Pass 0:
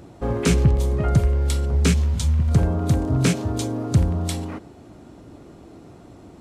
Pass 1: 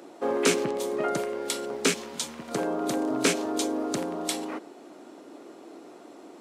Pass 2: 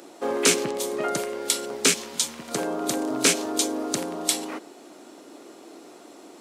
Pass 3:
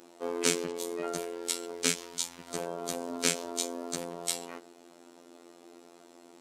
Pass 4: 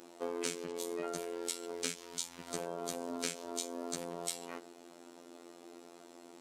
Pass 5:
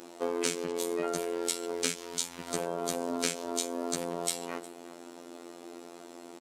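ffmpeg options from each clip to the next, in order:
ffmpeg -i in.wav -af "highpass=frequency=290:width=0.5412,highpass=frequency=290:width=1.3066,volume=1dB" out.wav
ffmpeg -i in.wav -af "highshelf=frequency=2800:gain=9.5" out.wav
ffmpeg -i in.wav -af "afftfilt=real='hypot(re,im)*cos(PI*b)':imag='0':win_size=2048:overlap=0.75,volume=-5dB" out.wav
ffmpeg -i in.wav -af "acompressor=threshold=-34dB:ratio=4" out.wav
ffmpeg -i in.wav -af "aecho=1:1:360:0.0944,volume=6.5dB" out.wav

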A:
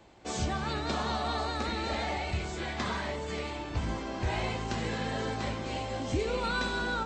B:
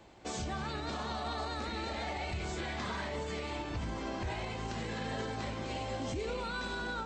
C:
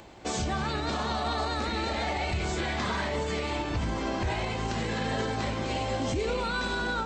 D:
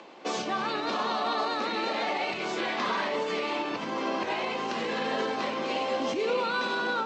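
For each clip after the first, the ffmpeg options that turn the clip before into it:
ffmpeg -i in.wav -af "alimiter=level_in=4.5dB:limit=-24dB:level=0:latency=1:release=85,volume=-4.5dB" out.wav
ffmpeg -i in.wav -af "acompressor=mode=upward:threshold=-58dB:ratio=2.5,volume=7.5dB" out.wav
ffmpeg -i in.wav -af "highpass=frequency=220:width=0.5412,highpass=frequency=220:width=1.3066,equalizer=frequency=500:width_type=q:width=4:gain=4,equalizer=frequency=1100:width_type=q:width=4:gain=6,equalizer=frequency=2700:width_type=q:width=4:gain=4,lowpass=frequency=6000:width=0.5412,lowpass=frequency=6000:width=1.3066" out.wav

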